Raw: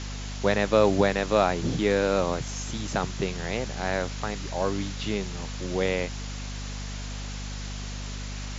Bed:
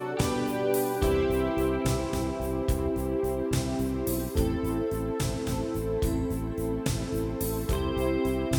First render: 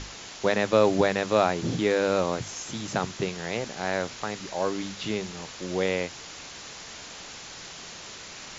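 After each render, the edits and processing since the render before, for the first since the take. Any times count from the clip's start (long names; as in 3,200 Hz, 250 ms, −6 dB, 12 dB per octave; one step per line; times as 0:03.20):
mains-hum notches 50/100/150/200/250 Hz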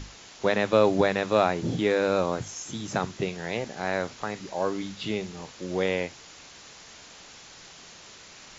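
noise reduction from a noise print 6 dB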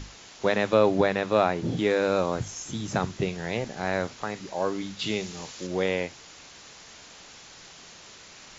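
0:00.74–0:01.77: high-shelf EQ 6,900 Hz −9 dB
0:02.35–0:04.07: low-shelf EQ 130 Hz +8 dB
0:04.99–0:05.67: high-shelf EQ 3,000 Hz +8.5 dB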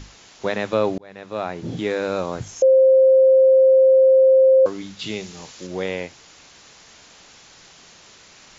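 0:00.98–0:01.76: fade in
0:02.62–0:04.66: beep over 527 Hz −9.5 dBFS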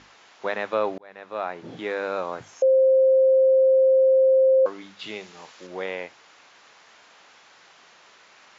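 resonant band-pass 1,200 Hz, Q 0.69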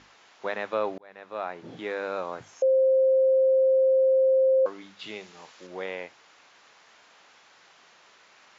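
level −3.5 dB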